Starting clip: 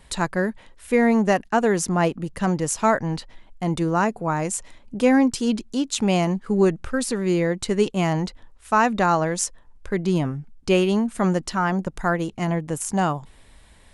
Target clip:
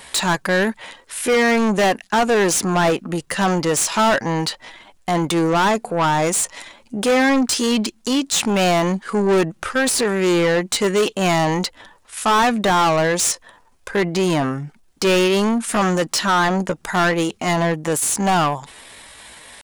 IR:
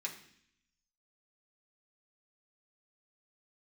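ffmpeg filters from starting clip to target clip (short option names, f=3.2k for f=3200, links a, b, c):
-filter_complex "[0:a]crystalizer=i=1:c=0,atempo=0.71,asplit=2[a][b];[b]highpass=f=720:p=1,volume=28dB,asoftclip=type=tanh:threshold=-2.5dB[c];[a][c]amix=inputs=2:normalize=0,lowpass=f=6.3k:p=1,volume=-6dB,volume=-6dB"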